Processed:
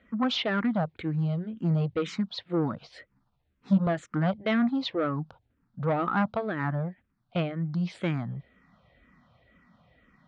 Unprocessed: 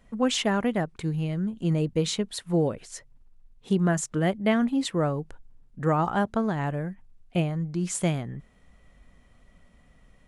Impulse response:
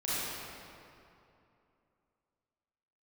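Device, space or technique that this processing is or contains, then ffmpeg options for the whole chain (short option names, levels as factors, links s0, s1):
barber-pole phaser into a guitar amplifier: -filter_complex "[0:a]asplit=2[s0][s1];[s1]afreqshift=-2[s2];[s0][s2]amix=inputs=2:normalize=1,asoftclip=type=tanh:threshold=0.0708,highpass=100,equalizer=f=410:t=q:w=4:g=-6,equalizer=f=1300:t=q:w=4:g=4,equalizer=f=2800:t=q:w=4:g=-4,lowpass=f=4200:w=0.5412,lowpass=f=4200:w=1.3066,asettb=1/sr,asplit=3[s3][s4][s5];[s3]atrim=end=2.794[s6];[s4]atrim=start=2.79:end=3.87,asetpts=PTS-STARTPTS,afade=t=in:d=0.004:c=qsin,afade=t=out:st=1.076:d=0.004:c=qsin,asplit=2[s7][s8];[s8]adelay=15,volume=0.794[s9];[s7][s9]amix=inputs=2:normalize=0,atrim=end_sample=47628[s10];[s5]atrim=start=3.866[s11];[s6][s10]acrossfade=d=0.004:c1=hsin:c2=qsin[s12];[s12][s11]acrossfade=d=0.004:c1=qsin:c2=hsin,volume=1.58"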